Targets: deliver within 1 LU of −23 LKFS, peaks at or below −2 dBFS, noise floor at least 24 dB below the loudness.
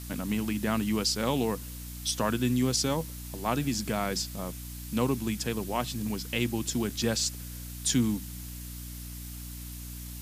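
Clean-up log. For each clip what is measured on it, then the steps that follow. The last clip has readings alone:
mains hum 60 Hz; hum harmonics up to 300 Hz; level of the hum −39 dBFS; background noise floor −41 dBFS; target noise floor −55 dBFS; integrated loudness −30.5 LKFS; sample peak −13.0 dBFS; target loudness −23.0 LKFS
→ hum removal 60 Hz, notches 5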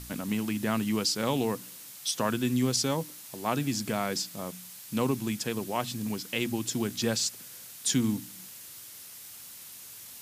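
mains hum none found; background noise floor −46 dBFS; target noise floor −54 dBFS
→ noise reduction from a noise print 8 dB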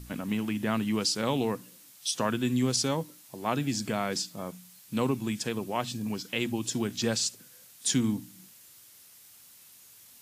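background noise floor −54 dBFS; integrated loudness −30.0 LKFS; sample peak −13.5 dBFS; target loudness −23.0 LKFS
→ level +7 dB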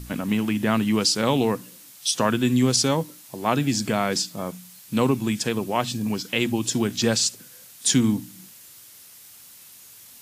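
integrated loudness −23.0 LKFS; sample peak −6.5 dBFS; background noise floor −47 dBFS

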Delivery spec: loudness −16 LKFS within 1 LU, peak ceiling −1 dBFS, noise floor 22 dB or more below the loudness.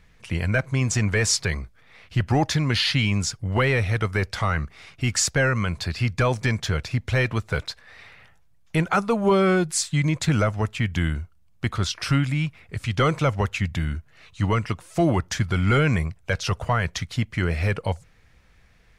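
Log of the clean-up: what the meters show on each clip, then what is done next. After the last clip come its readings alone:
integrated loudness −24.0 LKFS; sample peak −11.0 dBFS; target loudness −16.0 LKFS
→ level +8 dB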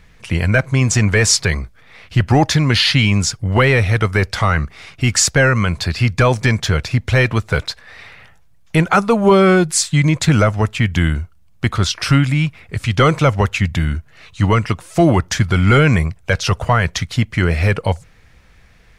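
integrated loudness −16.0 LKFS; sample peak −3.0 dBFS; background noise floor −48 dBFS

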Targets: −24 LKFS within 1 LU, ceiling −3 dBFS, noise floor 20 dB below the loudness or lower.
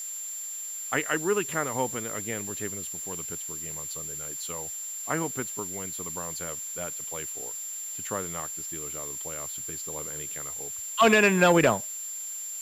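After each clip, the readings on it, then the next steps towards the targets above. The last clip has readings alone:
interfering tone 7,300 Hz; level of the tone −34 dBFS; background noise floor −37 dBFS; target noise floor −49 dBFS; integrated loudness −28.5 LKFS; sample peak −10.0 dBFS; target loudness −24.0 LKFS
→ notch filter 7,300 Hz, Q 30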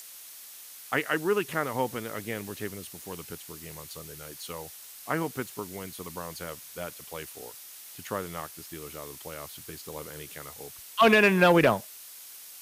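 interfering tone none found; background noise floor −47 dBFS; target noise floor −49 dBFS
→ noise reduction from a noise print 6 dB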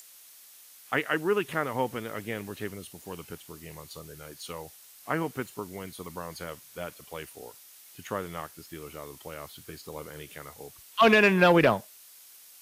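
background noise floor −53 dBFS; integrated loudness −27.0 LKFS; sample peak −10.5 dBFS; target loudness −24.0 LKFS
→ level +3 dB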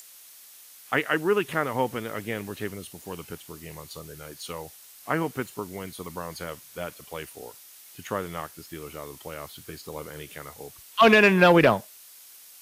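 integrated loudness −24.0 LKFS; sample peak −7.5 dBFS; background noise floor −50 dBFS

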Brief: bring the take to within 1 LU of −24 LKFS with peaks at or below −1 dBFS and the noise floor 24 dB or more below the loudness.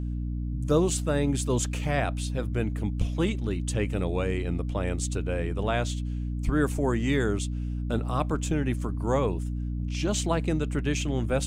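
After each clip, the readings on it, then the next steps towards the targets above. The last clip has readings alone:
mains hum 60 Hz; hum harmonics up to 300 Hz; level of the hum −28 dBFS; integrated loudness −28.5 LKFS; sample peak −11.5 dBFS; target loudness −24.0 LKFS
→ hum removal 60 Hz, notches 5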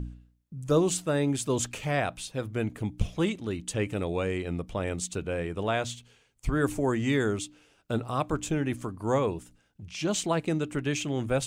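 mains hum none found; integrated loudness −29.5 LKFS; sample peak −12.0 dBFS; target loudness −24.0 LKFS
→ level +5.5 dB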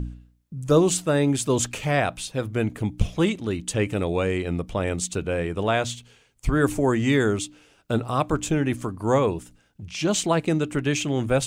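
integrated loudness −24.0 LKFS; sample peak −6.5 dBFS; background noise floor −61 dBFS

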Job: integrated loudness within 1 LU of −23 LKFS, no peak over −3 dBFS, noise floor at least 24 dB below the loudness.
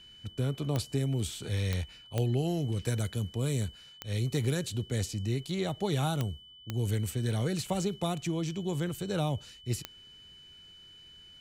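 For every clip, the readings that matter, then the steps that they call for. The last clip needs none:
number of clicks 7; interfering tone 3,000 Hz; level of the tone −51 dBFS; integrated loudness −32.5 LKFS; sample peak −17.0 dBFS; target loudness −23.0 LKFS
→ click removal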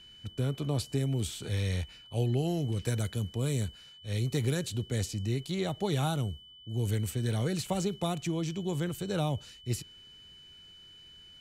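number of clicks 0; interfering tone 3,000 Hz; level of the tone −51 dBFS
→ notch filter 3,000 Hz, Q 30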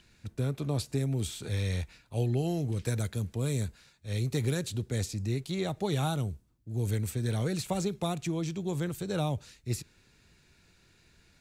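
interfering tone none found; integrated loudness −32.5 LKFS; sample peak −19.0 dBFS; target loudness −23.0 LKFS
→ level +9.5 dB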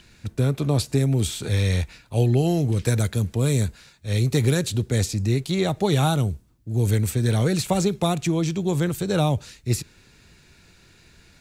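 integrated loudness −23.0 LKFS; sample peak −9.5 dBFS; background noise floor −55 dBFS

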